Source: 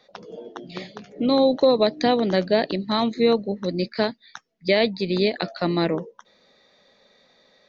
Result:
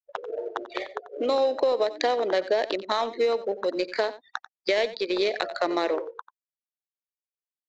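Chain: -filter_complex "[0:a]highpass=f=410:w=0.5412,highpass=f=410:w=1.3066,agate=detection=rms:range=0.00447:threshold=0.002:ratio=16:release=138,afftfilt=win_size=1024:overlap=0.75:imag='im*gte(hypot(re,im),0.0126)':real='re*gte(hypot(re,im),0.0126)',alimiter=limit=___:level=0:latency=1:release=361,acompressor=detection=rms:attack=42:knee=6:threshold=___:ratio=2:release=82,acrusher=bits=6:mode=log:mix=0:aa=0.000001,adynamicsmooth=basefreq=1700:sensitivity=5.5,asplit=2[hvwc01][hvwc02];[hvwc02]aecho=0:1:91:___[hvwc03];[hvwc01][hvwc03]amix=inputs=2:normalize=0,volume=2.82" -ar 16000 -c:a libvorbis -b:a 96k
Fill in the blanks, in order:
0.178, 0.0126, 0.168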